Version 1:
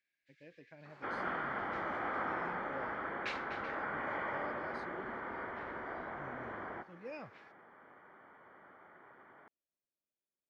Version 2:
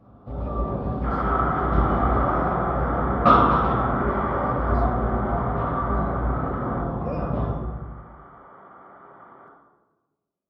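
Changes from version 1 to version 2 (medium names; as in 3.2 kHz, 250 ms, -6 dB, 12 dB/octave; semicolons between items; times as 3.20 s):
first sound: remove rippled Chebyshev high-pass 1.6 kHz, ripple 6 dB; reverb: on, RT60 1.2 s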